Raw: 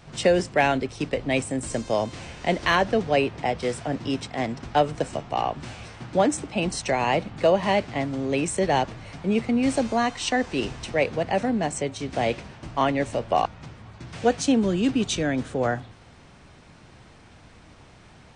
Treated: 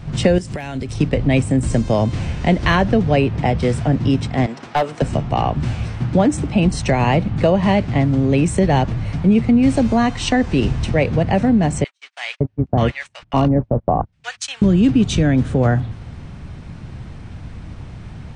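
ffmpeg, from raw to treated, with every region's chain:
-filter_complex "[0:a]asettb=1/sr,asplit=3[a][b][c];[a]atrim=end=0.384[d];[b]atrim=start=0.38:end=0.94,asetpts=PTS-STARTPTS,afade=t=in:d=0.004:c=qsin,afade=t=out:st=0.556:d=0.004:c=qsin,aemphasis=mode=production:type=75fm,acompressor=threshold=-33dB:ratio=8:attack=3.2:release=140:knee=1:detection=peak[e];[c]atrim=start=0.936[f];[d][e]acrossfade=d=0.004:c1=hsin:c2=qsin[g];[g][f]acrossfade=d=0.004:c1=qsin:c2=hsin,asettb=1/sr,asplit=3[h][i][j];[h]atrim=end=4.464[k];[i]atrim=start=4.46:end=5.02,asetpts=PTS-STARTPTS,afade=t=in:d=0.004:c=qsin,afade=t=out:st=0.556:d=0.004:c=qsin,highpass=460,asoftclip=type=hard:threshold=-17.5dB[l];[j]atrim=start=5.016[m];[k][l]acrossfade=d=0.004:c1=hsin:c2=qsin[n];[n][m]acrossfade=d=0.004:c1=qsin:c2=hsin,asettb=1/sr,asplit=3[o][p][q];[o]atrim=end=11.844[r];[p]atrim=start=11.84:end=14.62,asetpts=PTS-STARTPTS,afade=t=in:d=0.004:c=qsin,afade=t=out:st=2.776:d=0.004:c=qsin,agate=range=-38dB:threshold=-31dB:ratio=16:release=100:detection=peak,acrossover=split=1200[s][t];[s]adelay=560[u];[u][t]amix=inputs=2:normalize=0,atrim=end_sample=122598[v];[q]atrim=start=14.616[w];[r][v]acrossfade=d=0.004:c1=hsin:c2=qsin[x];[x][w]acrossfade=d=0.004:c1=qsin:c2=hsin,bass=f=250:g=14,treble=f=4k:g=-4,acompressor=threshold=-20dB:ratio=2,volume=6.5dB"

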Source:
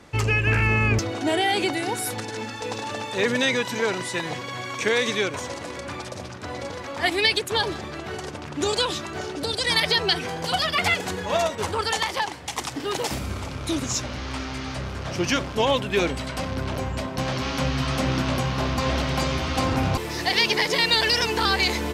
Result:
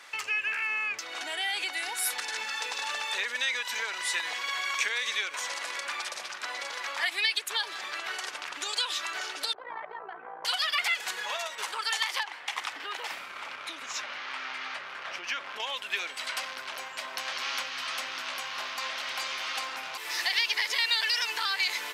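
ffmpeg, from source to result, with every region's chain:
-filter_complex "[0:a]asettb=1/sr,asplit=3[a][b][c];[a]atrim=end=9.534[d];[b]atrim=start=9.53:end=10.45,asetpts=PTS-STARTPTS,afade=t=in:d=0.004:c=qsin,afade=t=out:st=0.916:d=0.004:c=qsin,lowpass=f=1.1k:w=0.5412,lowpass=f=1.1k:w=1.3066,tremolo=f=57:d=0.621[e];[c]atrim=start=10.446[f];[d][e]acrossfade=d=0.004:c1=hsin:c2=qsin[g];[g][f]acrossfade=d=0.004:c1=qsin:c2=hsin,asettb=1/sr,asplit=3[h][i][j];[h]atrim=end=12.234[k];[i]atrim=start=12.23:end=15.6,asetpts=PTS-STARTPTS,afade=t=in:d=0.004:c=qsin,afade=t=out:st=3.366:d=0.004:c=qsin,bass=f=250:g=1,treble=f=4k:g=-14,acompressor=threshold=-28dB:ratio=2:attack=3.2:release=140:knee=1:detection=peak[l];[j]atrim=start=15.596[m];[k][l]acrossfade=d=0.004:c1=hsin:c2=qsin[n];[n][m]acrossfade=d=0.004:c1=qsin:c2=hsin,equalizer=f=7.3k:t=o:w=1.9:g=-4,acompressor=threshold=-30dB:ratio=6,highpass=1.5k,volume=7.5dB"

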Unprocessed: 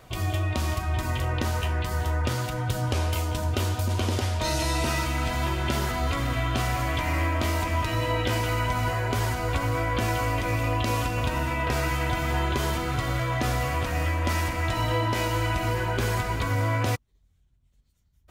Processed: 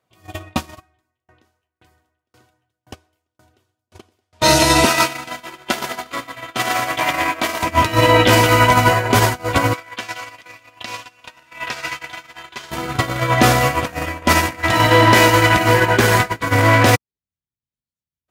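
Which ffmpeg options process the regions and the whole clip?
-filter_complex "[0:a]asettb=1/sr,asplit=3[a][b][c];[a]atrim=end=0.764[d];[b]atrim=start=0.76:end=4.33,asetpts=PTS-STARTPTS,afade=t=in:d=0.004:c=qsin,afade=t=out:st=3.566:d=0.004:c=qsin,aecho=1:1:2.7:0.38,atrim=end_sample=157437,aecho=1:1:991:0.562,atrim=end_sample=157437,aeval=exprs='val(0)*pow(10,-39*if(lt(mod(1.9*n/s,1),2*abs(1.9)/1000),1-mod(1.9*n/s,1)/(2*abs(1.9)/1000),(mod(1.9*n/s,1)-2*abs(1.9)/1000)/(1-2*abs(1.9)/1000))/20)':c=same[e];[c]atrim=start=4.326[f];[d][e]acrossfade=d=0.004:c1=hsin:c2=qsin[g];[g][f]acrossfade=d=0.004:c1=qsin:c2=hsin,asettb=1/sr,asplit=3[h][i][j];[h]atrim=end=4.854[k];[i]atrim=start=4.85:end=7.63,asetpts=PTS-STARTPTS,afade=t=in:d=0.004:c=qsin,afade=t=out:st=2.776:d=0.004:c=qsin,highpass=f=450:p=1,aecho=1:1:116|232|348|464|580|696|812:0.501|0.266|0.141|0.0746|0.0395|0.021|0.0111,atrim=end_sample=122598[l];[j]atrim=start=7.626[m];[k][l]acrossfade=d=0.004:c1=hsin:c2=qsin[n];[n][m]acrossfade=d=0.004:c1=qsin:c2=hsin,asettb=1/sr,asplit=3[o][p][q];[o]atrim=end=9.734[r];[p]atrim=start=9.73:end=12.71,asetpts=PTS-STARTPTS,afade=t=in:d=0.004:c=qsin,afade=t=out:st=2.976:d=0.004:c=qsin,acrossover=split=6900[s][t];[t]acompressor=threshold=-55dB:ratio=4:attack=1:release=60[u];[s][u]amix=inputs=2:normalize=0,tiltshelf=f=830:g=-9.5,flanger=delay=4.1:depth=5.1:regen=-90:speed=1.3:shape=sinusoidal[v];[q]atrim=start=12.706[w];[r][v]acrossfade=d=0.004:c1=hsin:c2=qsin[x];[x][w]acrossfade=d=0.004:c1=qsin:c2=hsin,asettb=1/sr,asplit=3[y][z][aa];[y]atrim=end=14.514[ab];[z]atrim=start=14.51:end=16.94,asetpts=PTS-STARTPTS,afade=t=in:d=0.004:c=qsin,afade=t=out:st=2.426:d=0.004:c=qsin,equalizer=f=1.8k:w=4:g=5,volume=21dB,asoftclip=hard,volume=-21dB[ac];[aa]atrim=start=16.936[ad];[ab][ac]acrossfade=d=0.004:c1=hsin:c2=qsin[ae];[ae][ad]acrossfade=d=0.004:c1=qsin:c2=hsin,highpass=140,agate=range=-44dB:threshold=-26dB:ratio=16:detection=peak,alimiter=level_in=24.5dB:limit=-1dB:release=50:level=0:latency=1,volume=-1dB"

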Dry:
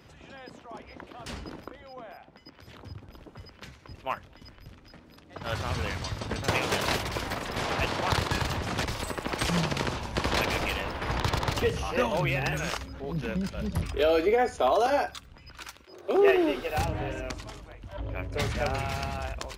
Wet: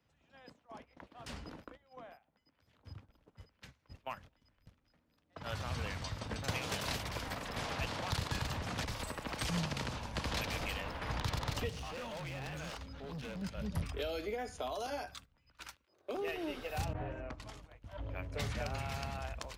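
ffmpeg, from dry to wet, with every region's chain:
-filter_complex "[0:a]asettb=1/sr,asplit=3[a][b][c];[a]atrim=end=11.694[d];[b]atrim=start=11.69:end=13.42,asetpts=PTS-STARTPTS,afade=t=in:d=0.004:c=qsin,afade=t=out:st=1.726:d=0.004:c=qsin,equalizer=f=3.8k:t=o:w=1.4:g=7,acrossover=split=1300|7900[e][f][g];[e]acompressor=threshold=-28dB:ratio=4[h];[f]acompressor=threshold=-38dB:ratio=4[i];[g]acompressor=threshold=-59dB:ratio=4[j];[h][i][j]amix=inputs=3:normalize=0,volume=33dB,asoftclip=hard,volume=-33dB[k];[c]atrim=start=13.416[l];[d][k]acrossfade=d=0.004:c1=hsin:c2=qsin[m];[m][l]acrossfade=d=0.004:c1=qsin:c2=hsin,asettb=1/sr,asplit=3[n][o][p];[n]atrim=end=16.934[q];[o]atrim=start=16.93:end=17.4,asetpts=PTS-STARTPTS,afade=t=in:d=0.004:c=qsin,afade=t=out:st=0.466:d=0.004:c=qsin,aemphasis=mode=production:type=75kf,agate=range=-33dB:threshold=-34dB:ratio=3:release=100:detection=peak,lowpass=1.4k[r];[p]atrim=start=17.396[s];[q][r]acrossfade=d=0.004:c1=hsin:c2=qsin[t];[t][s]acrossfade=d=0.004:c1=qsin:c2=hsin,agate=range=-15dB:threshold=-44dB:ratio=16:detection=peak,equalizer=f=370:t=o:w=0.23:g=-8,acrossover=split=230|3000[u][v][w];[v]acompressor=threshold=-31dB:ratio=6[x];[u][x][w]amix=inputs=3:normalize=0,volume=-7dB"

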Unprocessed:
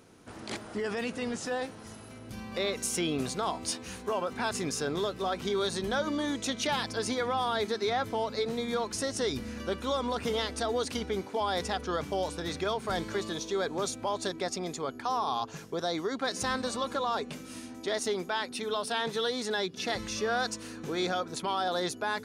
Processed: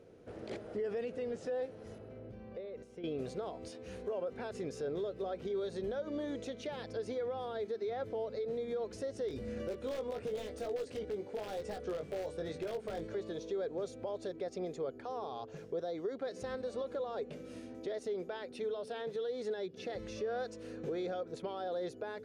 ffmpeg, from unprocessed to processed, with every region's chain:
-filter_complex "[0:a]asettb=1/sr,asplit=3[a][b][c];[a]atrim=end=1.984[d];[b]atrim=start=1.98:end=3.04,asetpts=PTS-STARTPTS,afade=t=in:d=0.004:c=qsin,afade=t=out:st=1.056:d=0.004:c=qsin,acompressor=threshold=-42dB:ratio=6:attack=3.2:release=140:knee=1:detection=peak,lowpass=f=1.8k:p=1[e];[c]atrim=start=3.036[f];[d][e]acrossfade=d=0.004:c1=hsin:c2=qsin[g];[g][f]acrossfade=d=0.004:c1=qsin:c2=hsin,asettb=1/sr,asplit=3[h][i][j];[h]atrim=end=9.284[k];[i]atrim=start=9.28:end=13.07,asetpts=PTS-STARTPTS,afade=t=in:d=0.004:c=qsin,afade=t=out:st=3.786:d=0.004:c=qsin,equalizer=f=8.3k:t=o:w=0.44:g=5,aeval=exprs='(mod(12.6*val(0)+1,2)-1)/12.6':c=same,asplit=2[l][m];[m]adelay=19,volume=-5.5dB[n];[l][n]amix=inputs=2:normalize=0,atrim=end_sample=167139[o];[j]atrim=start=13.066[p];[k][o]acrossfade=d=0.004:c1=hsin:c2=qsin[q];[q][p]acrossfade=d=0.004:c1=qsin:c2=hsin,equalizer=f=250:t=o:w=1:g=-5,equalizer=f=500:t=o:w=1:g=11,equalizer=f=1k:t=o:w=1:g=-10,alimiter=level_in=3dB:limit=-24dB:level=0:latency=1:release=262,volume=-3dB,lowpass=f=1.3k:p=1,volume=-2dB"

